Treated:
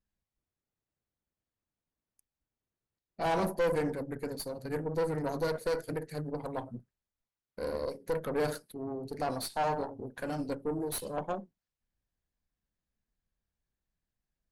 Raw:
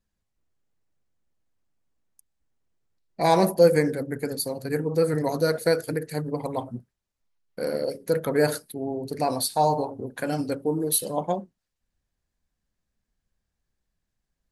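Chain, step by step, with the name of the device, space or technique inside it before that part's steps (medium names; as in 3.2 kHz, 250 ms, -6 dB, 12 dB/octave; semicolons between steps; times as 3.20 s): tube preamp driven hard (valve stage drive 21 dB, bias 0.65; treble shelf 5.2 kHz -7 dB); trim -3.5 dB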